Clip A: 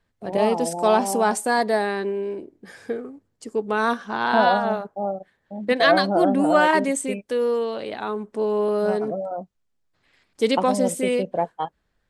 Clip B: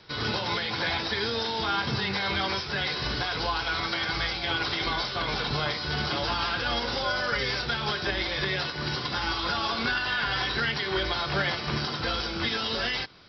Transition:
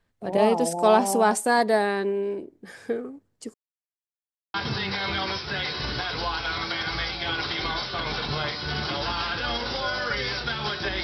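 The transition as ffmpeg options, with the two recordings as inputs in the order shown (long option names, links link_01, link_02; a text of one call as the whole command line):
ffmpeg -i cue0.wav -i cue1.wav -filter_complex "[0:a]apad=whole_dur=11.03,atrim=end=11.03,asplit=2[link_01][link_02];[link_01]atrim=end=3.54,asetpts=PTS-STARTPTS,afade=type=out:start_time=3.536:duration=0.004:curve=hsin[link_03];[link_02]atrim=start=3.54:end=4.54,asetpts=PTS-STARTPTS,volume=0[link_04];[1:a]atrim=start=1.76:end=8.25,asetpts=PTS-STARTPTS,afade=type=in:duration=0.004:curve=hsin[link_05];[link_03][link_04][link_05]concat=n=3:v=0:a=1" out.wav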